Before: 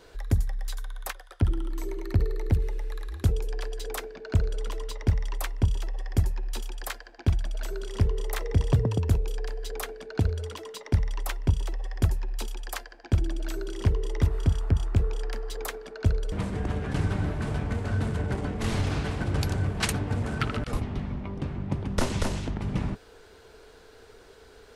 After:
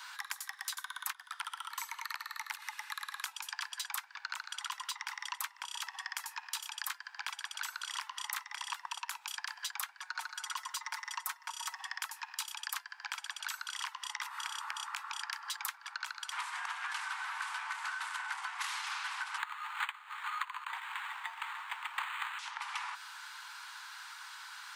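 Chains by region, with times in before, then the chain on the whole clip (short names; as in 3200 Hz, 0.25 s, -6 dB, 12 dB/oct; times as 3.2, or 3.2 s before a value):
10.01–11.79 bell 3000 Hz -6.5 dB 1.2 oct + comb 5.5 ms, depth 75%
19.38–22.39 bell 8200 Hz +12 dB 2.9 oct + frequency shift -280 Hz + decimation joined by straight lines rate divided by 8×
whole clip: steep high-pass 880 Hz 72 dB/oct; bell 1300 Hz +2 dB; compressor 10:1, threshold -45 dBFS; gain +9.5 dB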